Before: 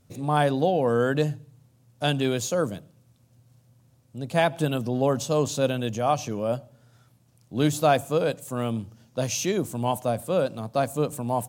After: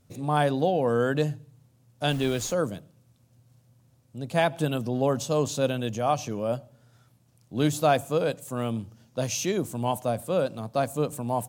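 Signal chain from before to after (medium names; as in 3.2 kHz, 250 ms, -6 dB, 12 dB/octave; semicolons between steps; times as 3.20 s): 2.09–2.52 s: added noise pink -44 dBFS; trim -1.5 dB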